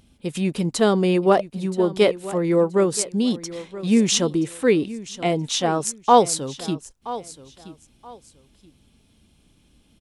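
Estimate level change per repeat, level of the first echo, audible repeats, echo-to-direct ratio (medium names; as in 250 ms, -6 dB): -12.0 dB, -16.0 dB, 2, -16.0 dB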